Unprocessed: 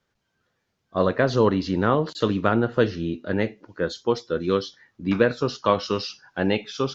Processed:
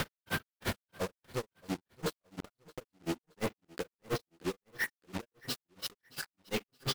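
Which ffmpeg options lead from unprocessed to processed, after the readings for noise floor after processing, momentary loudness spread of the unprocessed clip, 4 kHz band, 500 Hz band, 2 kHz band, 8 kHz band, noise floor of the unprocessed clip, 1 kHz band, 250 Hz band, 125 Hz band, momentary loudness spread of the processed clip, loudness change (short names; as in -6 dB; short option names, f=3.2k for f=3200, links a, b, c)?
under -85 dBFS, 9 LU, -7.5 dB, -18.5 dB, -9.5 dB, n/a, -76 dBFS, -17.0 dB, -17.0 dB, -15.0 dB, 8 LU, -16.0 dB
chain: -filter_complex "[0:a]aeval=exprs='val(0)+0.5*0.0266*sgn(val(0))':c=same,lowpass=5.4k,areverse,acompressor=threshold=-30dB:ratio=10,areverse,asoftclip=type=hard:threshold=-38.5dB,tremolo=f=2.9:d=0.61,acrusher=bits=5:mix=0:aa=0.5,aeval=exprs='0.00447*(cos(1*acos(clip(val(0)/0.00447,-1,1)))-cos(1*PI/2))+0.002*(cos(3*acos(clip(val(0)/0.00447,-1,1)))-cos(3*PI/2))':c=same,asplit=2[a][b];[b]aecho=0:1:622|1244:0.0708|0.0219[c];[a][c]amix=inputs=2:normalize=0,volume=17.5dB"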